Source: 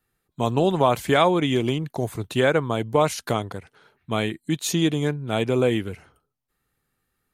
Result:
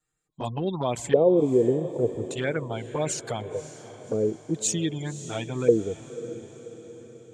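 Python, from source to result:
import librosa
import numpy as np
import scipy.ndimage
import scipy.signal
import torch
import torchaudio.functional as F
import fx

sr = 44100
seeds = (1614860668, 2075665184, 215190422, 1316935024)

y = fx.spec_gate(x, sr, threshold_db=-30, keep='strong')
y = fx.filter_lfo_lowpass(y, sr, shape='square', hz=0.44, low_hz=470.0, high_hz=7500.0, q=7.4)
y = fx.env_flanger(y, sr, rest_ms=6.5, full_db=-13.0)
y = fx.echo_diffused(y, sr, ms=560, feedback_pct=52, wet_db=-14)
y = y * librosa.db_to_amplitude(-5.0)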